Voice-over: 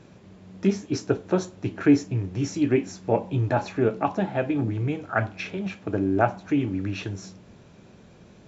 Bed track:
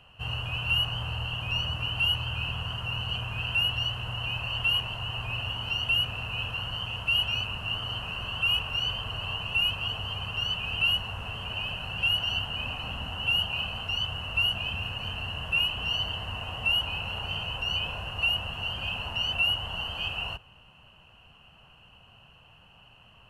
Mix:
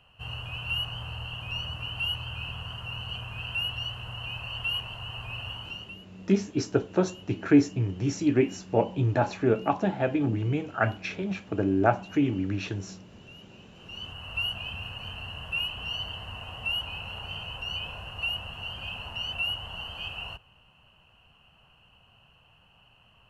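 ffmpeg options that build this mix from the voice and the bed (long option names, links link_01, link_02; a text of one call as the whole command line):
ffmpeg -i stem1.wav -i stem2.wav -filter_complex "[0:a]adelay=5650,volume=-1dB[link_01];[1:a]volume=16.5dB,afade=type=out:start_time=5.54:duration=0.43:silence=0.0891251,afade=type=in:start_time=13.71:duration=0.62:silence=0.0891251[link_02];[link_01][link_02]amix=inputs=2:normalize=0" out.wav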